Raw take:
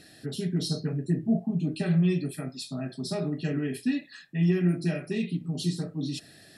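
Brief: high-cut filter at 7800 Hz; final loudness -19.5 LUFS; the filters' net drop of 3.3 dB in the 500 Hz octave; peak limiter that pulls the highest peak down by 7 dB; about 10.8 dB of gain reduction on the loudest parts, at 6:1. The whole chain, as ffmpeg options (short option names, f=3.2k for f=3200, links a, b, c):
-af "lowpass=7.8k,equalizer=f=500:t=o:g=-5,acompressor=threshold=-32dB:ratio=6,volume=20dB,alimiter=limit=-11dB:level=0:latency=1"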